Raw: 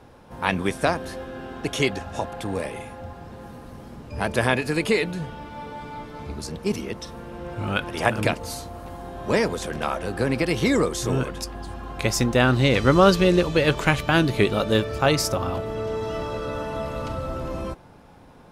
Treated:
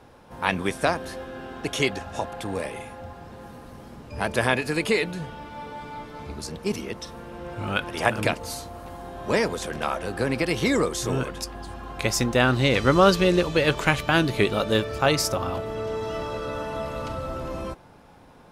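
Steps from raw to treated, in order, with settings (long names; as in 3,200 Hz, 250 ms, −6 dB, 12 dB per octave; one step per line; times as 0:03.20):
low-shelf EQ 390 Hz −3.5 dB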